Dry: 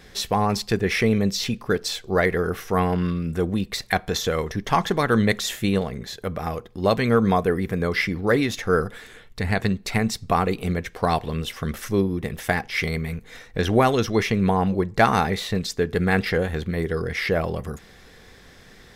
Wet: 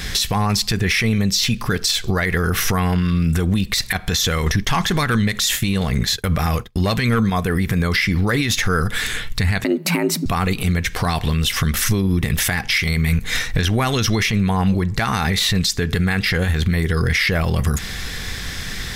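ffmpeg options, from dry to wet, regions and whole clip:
ffmpeg -i in.wav -filter_complex "[0:a]asettb=1/sr,asplit=3[link_01][link_02][link_03];[link_01]atrim=end=4.464[link_04];[link_02]atrim=start=4.46:end=7.3,asetpts=PTS-STARTPTS,afade=type=in:duration=0.004:curve=qsin,afade=type=out:start_time=2.836:duration=0.004:curve=qsin,agate=range=-33dB:threshold=-34dB:ratio=3:release=100:detection=peak,acontrast=76[link_05];[link_03]atrim=start=7.296[link_06];[link_04][link_05]acrossfade=duration=0.004:curve1=hsin:curve2=qsin[link_07];[link_07][link_06]acrossfade=duration=0.004:curve1=qsin:curve2=hsin,asettb=1/sr,asplit=3[link_08][link_09][link_10];[link_08]atrim=end=9.644[link_11];[link_09]atrim=start=9.64:end=10.26,asetpts=PTS-STARTPTS,afade=type=in:duration=0.004:curve=qsin,afade=type=out:start_time=0.616:duration=0.004:curve=qsin,equalizer=frequency=4900:width_type=o:width=2.8:gain=-14.5,afreqshift=160[link_12];[link_10]atrim=start=10.256[link_13];[link_11][link_12]acrossfade=duration=0.004:curve1=hsin:curve2=qsin[link_14];[link_14][link_13]acrossfade=duration=0.004:curve1=qsin:curve2=hsin,equalizer=frequency=490:width_type=o:width=2.5:gain=-14,acompressor=threshold=-35dB:ratio=12,alimiter=level_in=32dB:limit=-1dB:release=50:level=0:latency=1,volume=-8dB" out.wav

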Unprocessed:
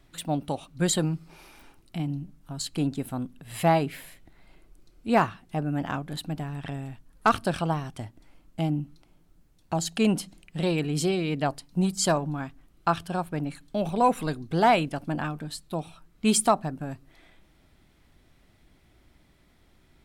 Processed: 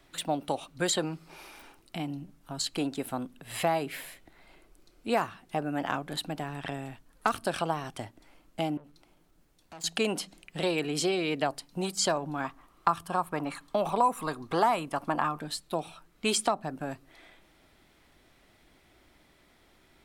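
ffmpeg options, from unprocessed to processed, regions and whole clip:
ffmpeg -i in.wav -filter_complex "[0:a]asettb=1/sr,asplit=3[link_01][link_02][link_03];[link_01]atrim=end=8.774[link_04];[link_02]atrim=start=8.77:end=9.84,asetpts=PTS-STARTPTS,afade=type=in:duration=0.004:curve=qsin,afade=type=out:start_time=1.066:duration=0.004:curve=qsin,acompressor=threshold=-35dB:ratio=4:attack=3.2:release=140:knee=1:detection=peak,aeval=exprs='(tanh(178*val(0)+0.2)-tanh(0.2))/178':channel_layout=same[link_05];[link_03]atrim=start=9.836[link_06];[link_04][link_05]acrossfade=duration=0.004:curve1=hsin:curve2=qsin[link_07];[link_07][link_06]acrossfade=duration=0.004:curve1=qsin:curve2=hsin,asettb=1/sr,asplit=3[link_08][link_09][link_10];[link_08]atrim=end=12.444[link_11];[link_09]atrim=start=12.44:end=15.4,asetpts=PTS-STARTPTS,afade=type=in:duration=0.004:curve=qsin,afade=type=out:start_time=2.956:duration=0.004:curve=qsin,equalizer=frequency=1100:width_type=o:width=0.86:gain=14,bandreject=frequency=1500:width=14[link_12];[link_10]atrim=start=15.396[link_13];[link_11][link_12]acrossfade=duration=0.004:curve1=hsin:curve2=qsin[link_14];[link_14][link_13]acrossfade=duration=0.004:curve1=qsin:curve2=hsin,bass=frequency=250:gain=-10,treble=frequency=4000:gain=-1,acrossover=split=300|7200[link_15][link_16][link_17];[link_15]acompressor=threshold=-41dB:ratio=4[link_18];[link_16]acompressor=threshold=-29dB:ratio=4[link_19];[link_17]acompressor=threshold=-45dB:ratio=4[link_20];[link_18][link_19][link_20]amix=inputs=3:normalize=0,volume=3.5dB" out.wav

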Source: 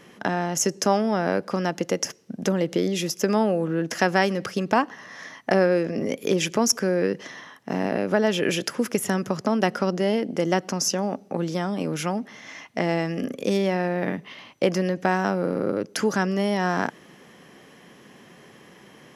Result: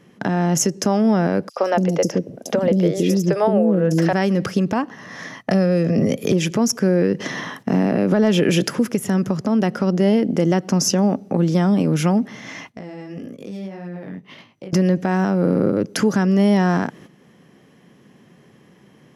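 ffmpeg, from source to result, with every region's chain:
ffmpeg -i in.wav -filter_complex "[0:a]asettb=1/sr,asplit=3[link_01][link_02][link_03];[link_01]atrim=end=1.494[link_04];[link_02]atrim=start=1.49:end=4.13,asetpts=PTS-STARTPTS,afade=type=in:duration=0.004:curve=qsin,afade=type=out:start_time=2.636:duration=0.004:curve=qsin,equalizer=frequency=580:width=1.4:gain=8,asoftclip=type=hard:threshold=-5dB,acrossover=split=420|4900[link_05][link_06][link_07];[link_06]adelay=70[link_08];[link_05]adelay=240[link_09];[link_09][link_08][link_07]amix=inputs=3:normalize=0,atrim=end_sample=116424[link_10];[link_03]atrim=start=4.126[link_11];[link_04][link_10]acrossfade=duration=0.004:curve1=hsin:curve2=qsin[link_12];[link_12][link_11]acrossfade=duration=0.004:curve1=qsin:curve2=hsin,asettb=1/sr,asplit=3[link_13][link_14][link_15];[link_13]atrim=end=5.394[link_16];[link_14]atrim=start=5.39:end=6.32,asetpts=PTS-STARTPTS,afade=type=in:duration=0.004:curve=qsin,afade=type=out:start_time=0.926:duration=0.004:curve=qsin,aecho=1:1:1.6:0.34,atrim=end_sample=41013,acrossover=split=240|3000[link_17][link_18][link_19];[link_18]acompressor=threshold=-30dB:ratio=2:attack=3.2:release=140:knee=2.83:detection=peak[link_20];[link_17][link_20][link_19]amix=inputs=3:normalize=0[link_21];[link_15]atrim=start=6.316[link_22];[link_16][link_21]acrossfade=duration=0.004:curve1=hsin:curve2=qsin[link_23];[link_23][link_22]acrossfade=duration=0.004:curve1=qsin:curve2=hsin,asettb=1/sr,asplit=3[link_24][link_25][link_26];[link_24]atrim=end=7.204[link_27];[link_25]atrim=start=7.2:end=8.79,asetpts=PTS-STARTPTS,afade=type=in:duration=0.004:curve=qsin,afade=type=out:start_time=1.586:duration=0.004:curve=qsin,highpass=frequency=110:width=0.5412,highpass=frequency=110:width=1.3066,acontrast=83[link_28];[link_26]atrim=start=8.786[link_29];[link_27][link_28]acrossfade=duration=0.004:curve1=hsin:curve2=qsin[link_30];[link_30][link_29]acrossfade=duration=0.004:curve1=qsin:curve2=hsin,asettb=1/sr,asplit=3[link_31][link_32][link_33];[link_31]atrim=end=12.724[link_34];[link_32]atrim=start=12.72:end=14.73,asetpts=PTS-STARTPTS,afade=type=in:duration=0.004:curve=qsin,afade=type=out:start_time=2.006:duration=0.004:curve=qsin,flanger=delay=17.5:depth=4.4:speed=1.7,acompressor=threshold=-40dB:ratio=10:attack=3.2:release=140:knee=1:detection=peak[link_35];[link_33]atrim=start=14.726[link_36];[link_34][link_35]acrossfade=duration=0.004:curve1=hsin:curve2=qsin[link_37];[link_37][link_36]acrossfade=duration=0.004:curve1=qsin:curve2=hsin,agate=range=-12dB:threshold=-45dB:ratio=16:detection=peak,equalizer=frequency=130:width_type=o:width=2.9:gain=10.5,alimiter=limit=-13dB:level=0:latency=1:release=394,volume=5dB" out.wav

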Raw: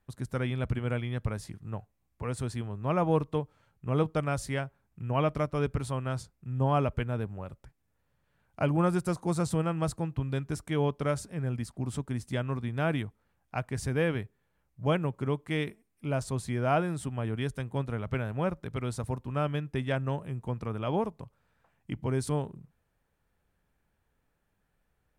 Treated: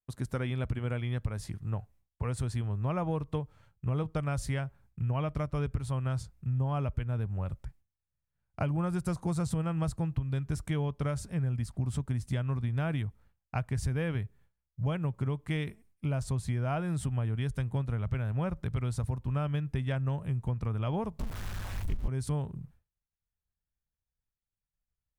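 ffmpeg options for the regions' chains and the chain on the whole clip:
ffmpeg -i in.wav -filter_complex "[0:a]asettb=1/sr,asplit=3[link_01][link_02][link_03];[link_01]atrim=end=21.194[link_04];[link_02]atrim=start=21.19:end=22.08,asetpts=PTS-STARTPTS,afade=type=in:duration=0.004:curve=qsin,afade=type=out:start_time=0.886:duration=0.004:curve=qsin,aeval=exprs='val(0)+0.5*0.0141*sgn(val(0))':channel_layout=same,aeval=exprs='val(0)*sin(2*PI*97*n/s)':channel_layout=same,asubboost=boost=8.5:cutoff=90[link_05];[link_03]atrim=start=22.076[link_06];[link_04][link_05]acrossfade=duration=0.004:curve1=hsin:curve2=qsin[link_07];[link_07][link_06]acrossfade=duration=0.004:curve1=qsin:curve2=hsin,agate=range=-33dB:threshold=-58dB:ratio=3:detection=peak,asubboost=boost=3.5:cutoff=150,acompressor=threshold=-30dB:ratio=6,volume=2dB" out.wav

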